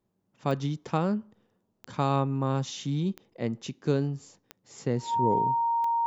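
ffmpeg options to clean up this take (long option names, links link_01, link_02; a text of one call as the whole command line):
ffmpeg -i in.wav -af "adeclick=threshold=4,bandreject=frequency=930:width=30" out.wav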